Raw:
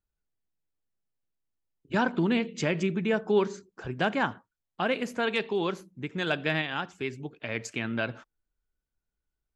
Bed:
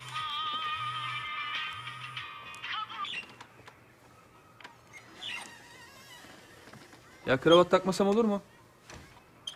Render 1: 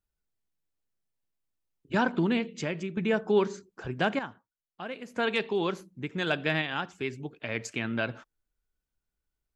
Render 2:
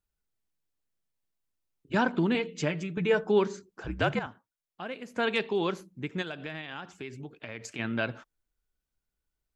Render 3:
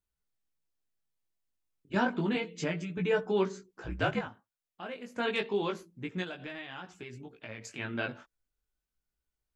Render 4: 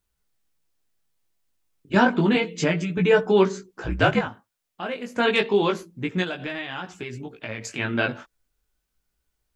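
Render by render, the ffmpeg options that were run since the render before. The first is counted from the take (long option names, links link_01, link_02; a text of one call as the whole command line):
ffmpeg -i in.wav -filter_complex "[0:a]asplit=4[link_01][link_02][link_03][link_04];[link_01]atrim=end=2.97,asetpts=PTS-STARTPTS,afade=type=out:start_time=2.18:duration=0.79:silence=0.334965[link_05];[link_02]atrim=start=2.97:end=4.192,asetpts=PTS-STARTPTS,afade=type=in:duration=0.004:curve=hsin:silence=0.334965[link_06];[link_03]atrim=start=4.188:end=5.162,asetpts=PTS-STARTPTS,volume=-10.5dB[link_07];[link_04]atrim=start=5.158[link_08];[link_05][link_06]concat=n=2:v=0:a=1[link_09];[link_09][link_07]acrossfade=duration=0.004:curve1=hsin:curve2=hsin[link_10];[link_10][link_08]acrossfade=duration=0.004:curve1=hsin:curve2=hsin" out.wav
ffmpeg -i in.wav -filter_complex "[0:a]asettb=1/sr,asplit=3[link_01][link_02][link_03];[link_01]atrim=end=2.344[link_04];[link_02]atrim=start=2.34:end=3.24,asetpts=PTS-STARTPTS,afade=type=in:duration=0.004:curve=qsin,afade=type=out:start_time=0.896:duration=0.004:curve=qsin,aecho=1:1:6.7:0.65,atrim=end_sample=39690[link_05];[link_03]atrim=start=3.236[link_06];[link_04][link_05]acrossfade=duration=0.004:curve1=hsin:curve2=qsin[link_07];[link_07][link_06]acrossfade=duration=0.004:curve1=qsin:curve2=hsin,asettb=1/sr,asplit=3[link_08][link_09][link_10];[link_08]atrim=end=3.874[link_11];[link_09]atrim=start=3.87:end=4.27,asetpts=PTS-STARTPTS,afade=type=in:duration=0.004:curve=qsin,afade=type=out:start_time=0.396:duration=0.004:curve=qsin,afreqshift=-63[link_12];[link_10]atrim=start=4.266[link_13];[link_11][link_12]acrossfade=duration=0.004:curve1=hsin:curve2=qsin[link_14];[link_14][link_13]acrossfade=duration=0.004:curve1=qsin:curve2=hsin,asplit=3[link_15][link_16][link_17];[link_15]afade=type=out:start_time=6.21:duration=0.02[link_18];[link_16]acompressor=threshold=-37dB:ratio=3:attack=3.2:release=140:knee=1:detection=peak,afade=type=in:start_time=6.21:duration=0.02,afade=type=out:start_time=7.78:duration=0.02[link_19];[link_17]afade=type=in:start_time=7.78:duration=0.02[link_20];[link_18][link_19][link_20]amix=inputs=3:normalize=0" out.wav
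ffmpeg -i in.wav -af "flanger=delay=16:depth=4.8:speed=0.3" out.wav
ffmpeg -i in.wav -af "volume=10.5dB" out.wav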